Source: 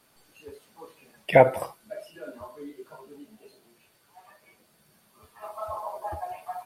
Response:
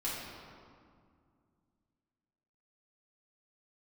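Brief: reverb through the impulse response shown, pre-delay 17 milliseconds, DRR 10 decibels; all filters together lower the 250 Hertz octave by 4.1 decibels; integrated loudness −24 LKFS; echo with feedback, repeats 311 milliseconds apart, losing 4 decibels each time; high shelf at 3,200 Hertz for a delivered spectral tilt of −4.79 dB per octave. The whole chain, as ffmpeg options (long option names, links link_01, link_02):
-filter_complex "[0:a]equalizer=frequency=250:width_type=o:gain=-5.5,highshelf=frequency=3200:gain=6.5,aecho=1:1:311|622|933|1244|1555|1866|2177|2488|2799:0.631|0.398|0.25|0.158|0.0994|0.0626|0.0394|0.0249|0.0157,asplit=2[link_01][link_02];[1:a]atrim=start_sample=2205,adelay=17[link_03];[link_02][link_03]afir=irnorm=-1:irlink=0,volume=-14.5dB[link_04];[link_01][link_04]amix=inputs=2:normalize=0,volume=1dB"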